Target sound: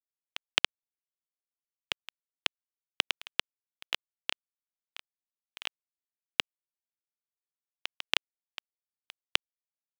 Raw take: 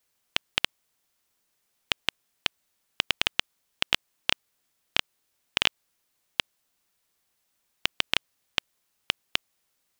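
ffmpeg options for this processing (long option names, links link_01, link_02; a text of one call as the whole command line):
ffmpeg -i in.wav -filter_complex "[0:a]acrossover=split=200|560|7700[link_01][link_02][link_03][link_04];[link_01]acompressor=threshold=-53dB:ratio=6[link_05];[link_05][link_02][link_03][link_04]amix=inputs=4:normalize=0,tremolo=f=1.7:d=0.94,aeval=exprs='val(0)*gte(abs(val(0)),0.0112)':channel_layout=same,volume=1dB" out.wav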